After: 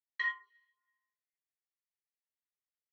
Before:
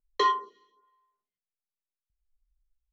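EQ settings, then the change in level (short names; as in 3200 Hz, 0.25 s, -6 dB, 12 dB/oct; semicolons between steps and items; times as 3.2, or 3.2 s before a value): ladder band-pass 2000 Hz, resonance 80%; -1.0 dB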